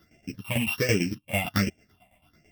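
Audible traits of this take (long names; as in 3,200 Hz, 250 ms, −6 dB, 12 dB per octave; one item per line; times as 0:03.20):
a buzz of ramps at a fixed pitch in blocks of 16 samples
phaser sweep stages 6, 1.3 Hz, lowest notch 370–1,100 Hz
tremolo saw down 9 Hz, depth 80%
a shimmering, thickened sound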